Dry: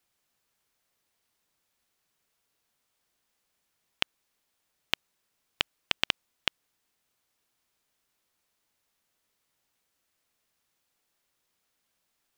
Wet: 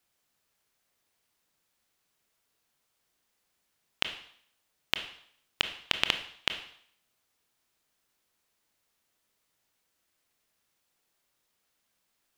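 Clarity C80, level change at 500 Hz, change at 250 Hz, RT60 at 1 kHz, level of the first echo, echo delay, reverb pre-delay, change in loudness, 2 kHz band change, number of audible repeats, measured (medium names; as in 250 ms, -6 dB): 14.0 dB, +1.0 dB, +0.5 dB, 0.60 s, no echo, no echo, 22 ms, +0.5 dB, +0.5 dB, no echo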